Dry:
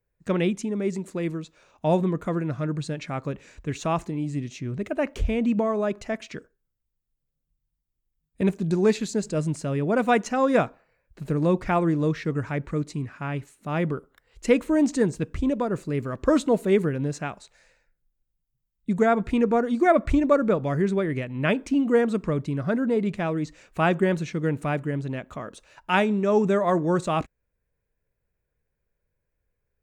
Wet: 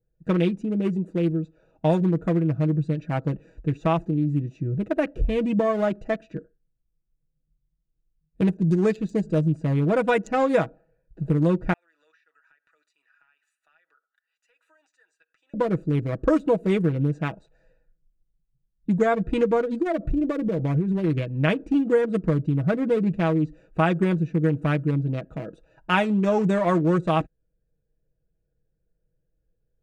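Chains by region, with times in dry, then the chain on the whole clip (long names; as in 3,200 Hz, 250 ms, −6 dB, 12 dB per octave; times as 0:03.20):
0:11.73–0:15.54: high-pass filter 1,400 Hz 24 dB per octave + downward compressor 5 to 1, threshold −50 dBFS
0:19.76–0:21.04: dynamic equaliser 1,600 Hz, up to −7 dB, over −39 dBFS, Q 1.8 + downward compressor 16 to 1, threshold −23 dBFS
whole clip: adaptive Wiener filter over 41 samples; comb filter 6.2 ms, depth 60%; downward compressor 3 to 1, threshold −22 dBFS; level +4 dB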